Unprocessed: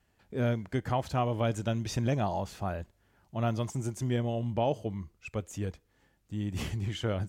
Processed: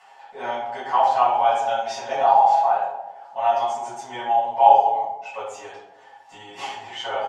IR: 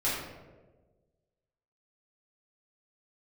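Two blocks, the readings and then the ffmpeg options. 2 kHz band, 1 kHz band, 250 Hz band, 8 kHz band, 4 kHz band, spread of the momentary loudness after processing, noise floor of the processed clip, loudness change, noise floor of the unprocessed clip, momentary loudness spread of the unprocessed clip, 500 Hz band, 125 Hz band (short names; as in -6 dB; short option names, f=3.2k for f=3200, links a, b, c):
+8.5 dB, +20.5 dB, under -10 dB, n/a, +7.5 dB, 18 LU, -49 dBFS, +13.0 dB, -71 dBFS, 9 LU, +9.0 dB, under -20 dB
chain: -filter_complex "[0:a]highpass=f=820:t=q:w=6.8,acompressor=mode=upward:threshold=-43dB:ratio=2.5,lowpass=7k,aecho=1:1:7.4:0.77[a];[1:a]atrim=start_sample=2205,asetrate=61740,aresample=44100[b];[a][b]afir=irnorm=-1:irlink=0,volume=-1.5dB"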